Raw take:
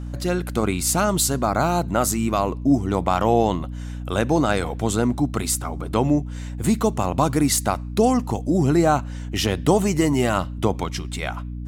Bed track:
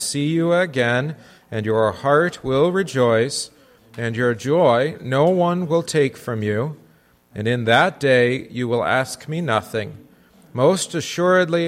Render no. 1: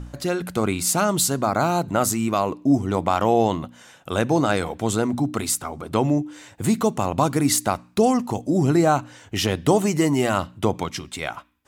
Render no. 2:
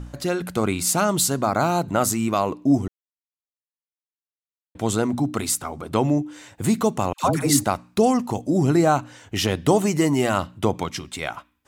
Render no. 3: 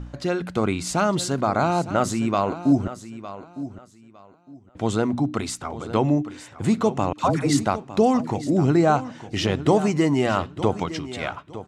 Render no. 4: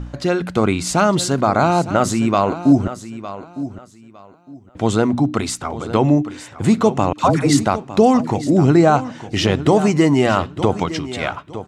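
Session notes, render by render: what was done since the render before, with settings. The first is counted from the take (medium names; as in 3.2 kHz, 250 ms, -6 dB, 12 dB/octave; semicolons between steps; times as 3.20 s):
de-hum 60 Hz, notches 5
2.88–4.75 s: mute; 7.13–7.64 s: phase dispersion lows, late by 110 ms, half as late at 690 Hz
distance through air 89 m; feedback delay 908 ms, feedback 23%, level -14 dB
trim +6 dB; peak limiter -3 dBFS, peak gain reduction 3 dB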